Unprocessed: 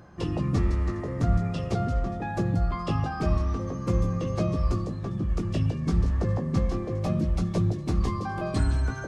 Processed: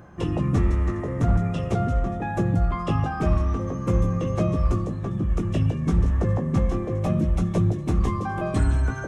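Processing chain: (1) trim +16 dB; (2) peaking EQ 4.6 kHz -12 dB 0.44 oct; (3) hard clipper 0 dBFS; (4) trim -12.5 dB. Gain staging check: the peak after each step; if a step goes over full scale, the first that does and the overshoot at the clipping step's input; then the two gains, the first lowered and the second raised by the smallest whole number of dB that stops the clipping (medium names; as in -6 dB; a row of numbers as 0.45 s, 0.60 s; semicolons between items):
+4.0 dBFS, +4.0 dBFS, 0.0 dBFS, -12.5 dBFS; step 1, 4.0 dB; step 1 +12 dB, step 4 -8.5 dB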